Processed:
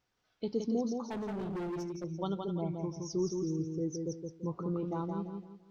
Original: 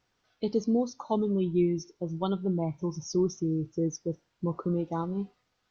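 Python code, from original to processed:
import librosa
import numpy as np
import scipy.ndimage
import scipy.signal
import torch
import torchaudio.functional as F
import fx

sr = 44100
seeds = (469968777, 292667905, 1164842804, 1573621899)

y = fx.echo_feedback(x, sr, ms=169, feedback_pct=33, wet_db=-4.5)
y = fx.clip_hard(y, sr, threshold_db=-29.0, at=(1.09, 2.04))
y = y * 10.0 ** (-6.0 / 20.0)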